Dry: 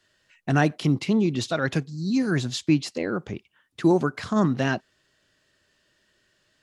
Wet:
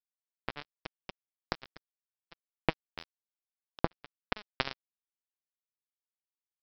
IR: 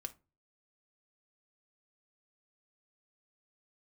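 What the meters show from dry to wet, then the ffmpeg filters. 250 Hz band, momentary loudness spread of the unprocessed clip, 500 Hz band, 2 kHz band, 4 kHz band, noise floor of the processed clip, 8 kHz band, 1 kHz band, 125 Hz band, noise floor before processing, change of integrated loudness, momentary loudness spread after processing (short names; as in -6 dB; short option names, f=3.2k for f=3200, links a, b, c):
-22.5 dB, 9 LU, -16.0 dB, -11.5 dB, -9.0 dB, under -85 dBFS, under -25 dB, -10.5 dB, -20.5 dB, -69 dBFS, -15.0 dB, 16 LU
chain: -af "acompressor=threshold=-37dB:ratio=5,aresample=11025,acrusher=bits=3:mix=0:aa=0.5,aresample=44100,dynaudnorm=f=290:g=7:m=16.5dB,volume=5dB"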